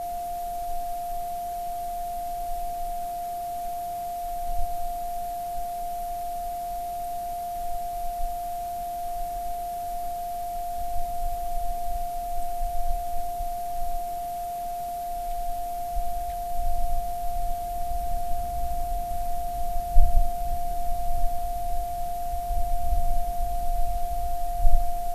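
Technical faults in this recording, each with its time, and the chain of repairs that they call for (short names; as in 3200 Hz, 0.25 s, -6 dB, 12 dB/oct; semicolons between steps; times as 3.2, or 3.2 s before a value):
tone 700 Hz -29 dBFS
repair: notch 700 Hz, Q 30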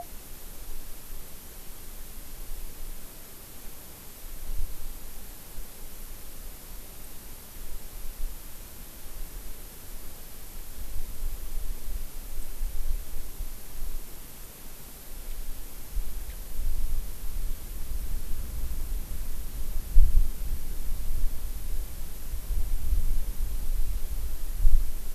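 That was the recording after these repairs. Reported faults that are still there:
none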